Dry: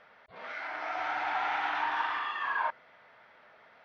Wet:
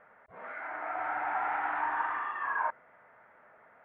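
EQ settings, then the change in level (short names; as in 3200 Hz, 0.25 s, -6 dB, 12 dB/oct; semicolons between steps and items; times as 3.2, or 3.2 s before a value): LPF 1900 Hz 24 dB/oct; 0.0 dB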